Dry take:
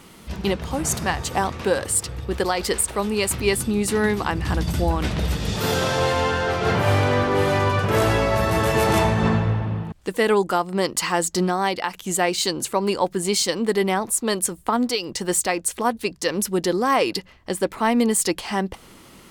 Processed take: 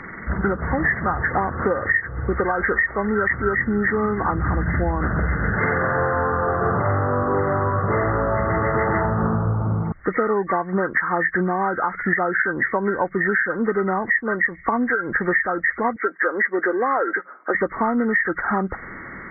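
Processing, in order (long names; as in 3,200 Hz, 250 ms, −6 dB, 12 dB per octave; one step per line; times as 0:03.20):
hearing-aid frequency compression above 1,100 Hz 4 to 1
0:15.96–0:17.55: high-pass filter 310 Hz 24 dB per octave
downward compressor 6 to 1, threshold −26 dBFS, peak gain reduction 16 dB
level +8 dB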